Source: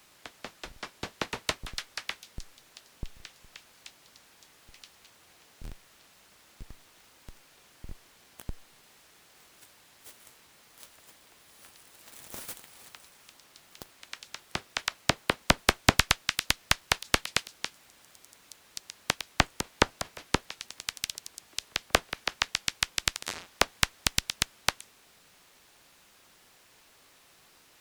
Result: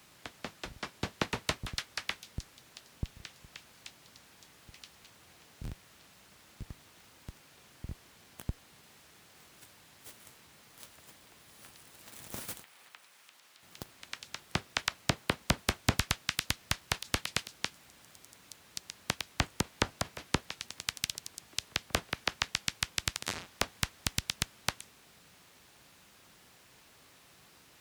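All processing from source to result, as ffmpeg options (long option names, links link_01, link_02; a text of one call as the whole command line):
ffmpeg -i in.wav -filter_complex "[0:a]asettb=1/sr,asplit=3[link_01][link_02][link_03];[link_01]atrim=end=12.634[link_04];[link_02]atrim=start=12.63:end=13.63,asetpts=PTS-STARTPTS,afade=type=in:duration=0.004:curve=qsin,afade=type=out:start_time=0.996:duration=0.004:curve=qsin,acrossover=split=3400[link_05][link_06];[link_06]acompressor=threshold=-58dB:ratio=4:attack=1:release=60[link_07];[link_05][link_07]amix=inputs=2:normalize=0,highpass=frequency=1100:poles=1[link_08];[link_03]atrim=start=13.626[link_09];[link_04][link_08]acrossfade=duration=0.004:curve1=hsin:curve2=qsin[link_10];[link_10][link_09]acrossfade=duration=0.004:curve1=qsin:curve2=hsin,highpass=61,alimiter=limit=-16dB:level=0:latency=1:release=28,bass=frequency=250:gain=7,treble=frequency=4000:gain=-1" out.wav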